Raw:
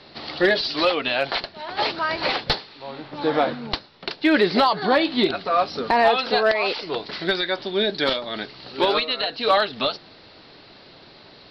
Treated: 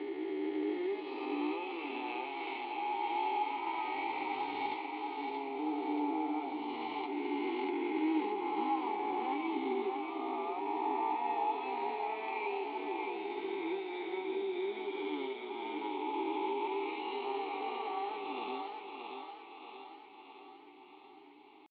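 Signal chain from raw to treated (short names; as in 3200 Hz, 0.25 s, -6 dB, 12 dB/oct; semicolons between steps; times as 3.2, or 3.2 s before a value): spectral swells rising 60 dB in 2.13 s; thirty-one-band EQ 400 Hz +12 dB, 800 Hz +6 dB, 3150 Hz +6 dB, 5000 Hz -12 dB; compressor 4:1, threshold -16 dBFS, peak gain reduction 12 dB; vowel filter u; tempo 0.53×; tone controls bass -11 dB, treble -8 dB; thinning echo 0.629 s, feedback 60%, high-pass 320 Hz, level -4 dB; flange 0.18 Hz, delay 6.9 ms, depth 1.7 ms, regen -46%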